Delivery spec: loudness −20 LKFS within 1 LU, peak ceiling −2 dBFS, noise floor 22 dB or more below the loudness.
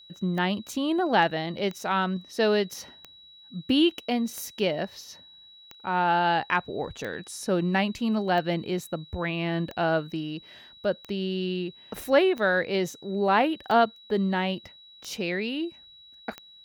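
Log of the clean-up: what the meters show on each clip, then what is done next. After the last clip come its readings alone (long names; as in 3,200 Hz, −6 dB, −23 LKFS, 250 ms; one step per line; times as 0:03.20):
number of clicks 13; interfering tone 3,900 Hz; level of the tone −49 dBFS; integrated loudness −27.0 LKFS; sample peak −7.5 dBFS; target loudness −20.0 LKFS
→ click removal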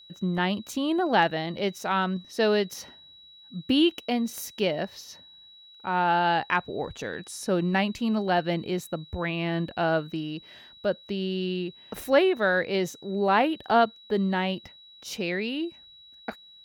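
number of clicks 0; interfering tone 3,900 Hz; level of the tone −49 dBFS
→ notch filter 3,900 Hz, Q 30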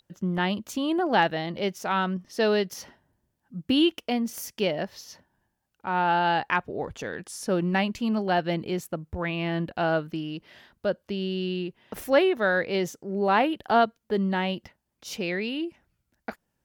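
interfering tone none found; integrated loudness −27.0 LKFS; sample peak −7.5 dBFS; target loudness −20.0 LKFS
→ level +7 dB
brickwall limiter −2 dBFS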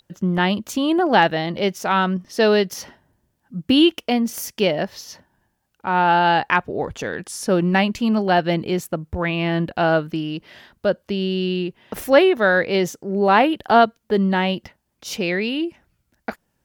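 integrated loudness −20.0 LKFS; sample peak −2.0 dBFS; background noise floor −71 dBFS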